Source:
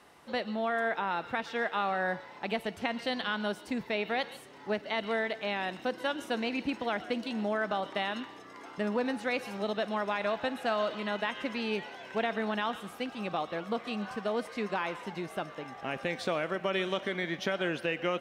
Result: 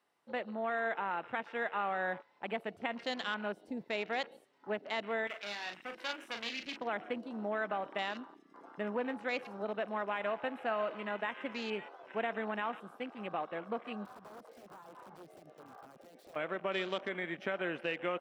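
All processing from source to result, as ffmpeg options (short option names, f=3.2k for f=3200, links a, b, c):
-filter_complex "[0:a]asettb=1/sr,asplit=3[a][b][c];[a]atrim=end=5.274[d];[b]atrim=start=5.27:end=6.77,asetpts=PTS-STARTPTS,afade=t=in:d=0.004:c=qsin,afade=t=out:st=1.496:d=0.004:c=qsin,aeval=exprs='clip(val(0),-1,0.00944)':c=same,tiltshelf=f=1.3k:g=-7.5,asplit=2[e][f];[f]adelay=39,volume=-6.5dB[g];[e][g]amix=inputs=2:normalize=0,atrim=end_sample=66150[h];[c]atrim=start=6.766[i];[d][h]acrossfade=d=0.004:c1=hsin:c2=qsin[j];[j][i]acrossfade=d=0.004:c1=qsin:c2=hsin,asettb=1/sr,asplit=3[k][l][m];[k]atrim=end=14.054[n];[l]atrim=start=14.05:end=16.36,asetpts=PTS-STARTPTS,afade=t=in:d=0.004:c=qsin,afade=t=out:st=2.306:d=0.004:c=qsin,acompressor=threshold=-40dB:ratio=5:attack=3.2:release=140:knee=1:detection=peak,aeval=exprs='(mod(79.4*val(0)+1,2)-1)/79.4':c=same[o];[m]atrim=start=16.356[p];[n][o]acrossfade=d=0.004:c1=hsin:c2=qsin[q];[q][p]acrossfade=d=0.004:c1=qsin:c2=hsin,afwtdn=0.00891,highpass=f=250:p=1,bandreject=f=6.5k:w=24,volume=-3.5dB"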